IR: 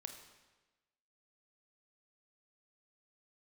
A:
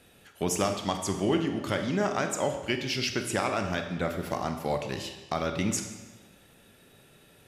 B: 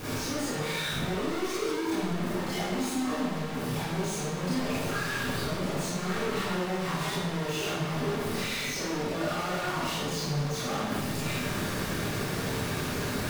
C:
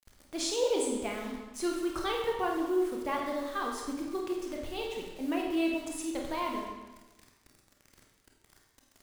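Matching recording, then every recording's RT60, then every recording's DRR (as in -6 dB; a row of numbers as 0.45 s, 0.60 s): A; 1.2 s, 1.2 s, 1.2 s; 5.0 dB, -10.0 dB, -0.5 dB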